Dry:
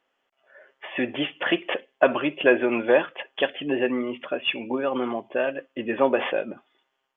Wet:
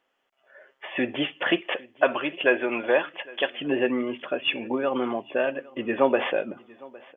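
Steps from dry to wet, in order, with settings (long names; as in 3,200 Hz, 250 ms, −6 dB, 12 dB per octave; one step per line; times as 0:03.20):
0:01.61–0:03.59: low-shelf EQ 400 Hz −8.5 dB
repeating echo 809 ms, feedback 36%, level −23 dB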